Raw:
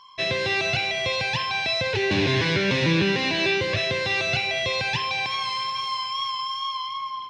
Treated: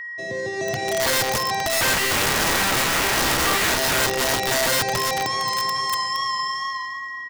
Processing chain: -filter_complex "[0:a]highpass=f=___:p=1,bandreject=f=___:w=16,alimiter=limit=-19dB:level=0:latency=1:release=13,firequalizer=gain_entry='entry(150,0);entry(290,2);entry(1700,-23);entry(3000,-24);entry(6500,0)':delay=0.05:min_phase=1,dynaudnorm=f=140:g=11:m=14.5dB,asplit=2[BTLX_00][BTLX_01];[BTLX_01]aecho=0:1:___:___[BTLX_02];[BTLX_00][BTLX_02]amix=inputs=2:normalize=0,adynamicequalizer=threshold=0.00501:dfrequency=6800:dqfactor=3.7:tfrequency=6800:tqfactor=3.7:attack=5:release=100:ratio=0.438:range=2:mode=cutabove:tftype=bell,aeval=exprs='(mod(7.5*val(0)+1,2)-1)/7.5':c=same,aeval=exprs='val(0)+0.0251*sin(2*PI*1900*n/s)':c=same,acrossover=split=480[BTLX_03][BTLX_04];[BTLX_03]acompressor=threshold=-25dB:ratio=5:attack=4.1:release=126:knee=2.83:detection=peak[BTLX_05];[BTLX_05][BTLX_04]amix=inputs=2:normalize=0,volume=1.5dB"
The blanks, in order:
270, 1300, 519, 0.0668